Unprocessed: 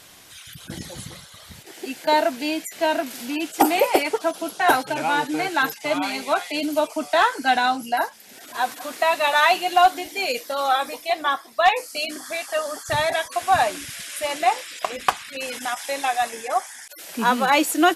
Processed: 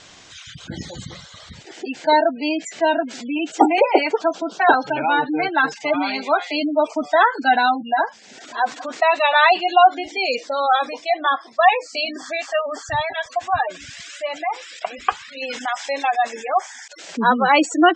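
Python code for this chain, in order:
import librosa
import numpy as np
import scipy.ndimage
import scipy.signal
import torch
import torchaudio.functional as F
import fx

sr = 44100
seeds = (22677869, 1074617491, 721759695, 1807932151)

y = fx.spec_gate(x, sr, threshold_db=-20, keep='strong')
y = scipy.signal.sosfilt(scipy.signal.butter(12, 7700.0, 'lowpass', fs=sr, output='sos'), y)
y = fx.comb_cascade(y, sr, direction='rising', hz=2.0, at=(12.85, 15.4), fade=0.02)
y = F.gain(torch.from_numpy(y), 3.5).numpy()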